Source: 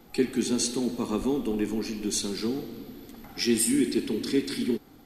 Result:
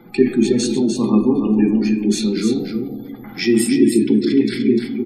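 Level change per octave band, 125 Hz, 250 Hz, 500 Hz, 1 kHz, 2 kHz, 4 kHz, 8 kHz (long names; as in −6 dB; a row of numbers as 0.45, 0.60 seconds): +14.0, +12.5, +10.5, +6.5, +8.5, +4.5, +1.5 decibels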